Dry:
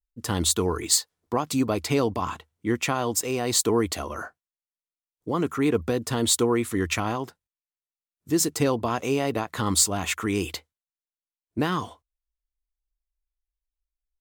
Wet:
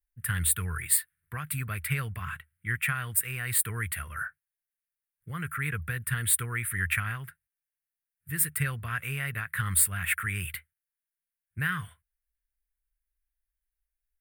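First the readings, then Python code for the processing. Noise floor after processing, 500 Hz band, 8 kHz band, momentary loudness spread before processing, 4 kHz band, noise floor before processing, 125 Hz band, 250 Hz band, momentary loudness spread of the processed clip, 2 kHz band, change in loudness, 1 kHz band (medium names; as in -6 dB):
under -85 dBFS, -23.0 dB, -3.0 dB, 12 LU, -12.5 dB, under -85 dBFS, -0.5 dB, -16.0 dB, 13 LU, +3.5 dB, -4.0 dB, -9.5 dB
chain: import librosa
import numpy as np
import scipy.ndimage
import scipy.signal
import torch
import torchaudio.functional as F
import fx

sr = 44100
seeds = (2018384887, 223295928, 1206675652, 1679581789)

y = fx.curve_eq(x, sr, hz=(150.0, 280.0, 410.0, 910.0, 1600.0, 2300.0, 4100.0, 6500.0, 9200.0), db=(0, -28, -23, -22, 8, 2, -15, -25, 6))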